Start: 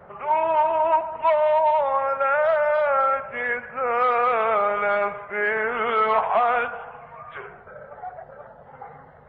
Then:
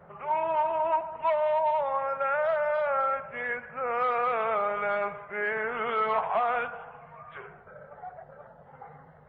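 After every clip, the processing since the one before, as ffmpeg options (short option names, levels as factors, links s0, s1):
-af "equalizer=f=160:t=o:w=0.26:g=8.5,volume=0.473"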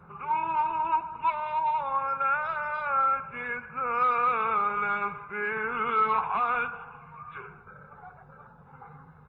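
-af "aecho=1:1:0.8:0.85,volume=0.891"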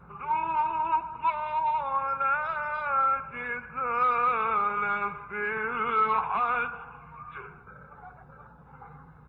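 -af "aeval=exprs='val(0)+0.00126*(sin(2*PI*60*n/s)+sin(2*PI*2*60*n/s)/2+sin(2*PI*3*60*n/s)/3+sin(2*PI*4*60*n/s)/4+sin(2*PI*5*60*n/s)/5)':c=same"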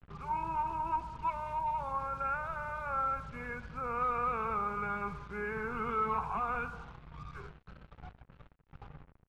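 -af "acrusher=bits=6:mix=0:aa=0.5,aemphasis=mode=reproduction:type=riaa,volume=0.422"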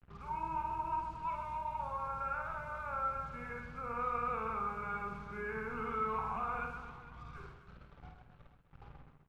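-af "aecho=1:1:50|130|258|462.8|790.5:0.631|0.398|0.251|0.158|0.1,volume=0.531"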